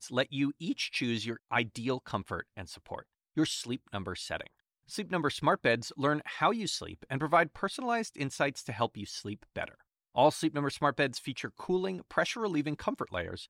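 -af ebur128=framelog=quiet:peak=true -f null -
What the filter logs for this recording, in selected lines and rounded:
Integrated loudness:
  I:         -32.4 LUFS
  Threshold: -42.7 LUFS
Loudness range:
  LRA:         4.8 LU
  Threshold: -52.6 LUFS
  LRA low:   -35.5 LUFS
  LRA high:  -30.7 LUFS
True peak:
  Peak:      -14.2 dBFS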